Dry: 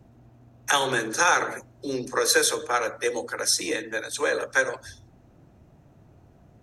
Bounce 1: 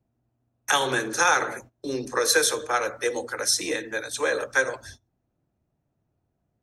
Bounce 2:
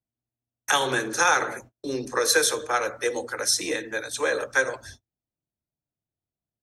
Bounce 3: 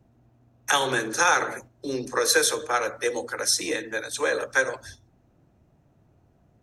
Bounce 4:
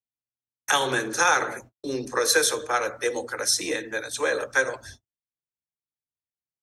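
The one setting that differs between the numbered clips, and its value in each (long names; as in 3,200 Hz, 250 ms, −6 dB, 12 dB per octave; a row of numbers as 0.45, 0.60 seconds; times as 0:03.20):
noise gate, range: −21, −39, −7, −55 decibels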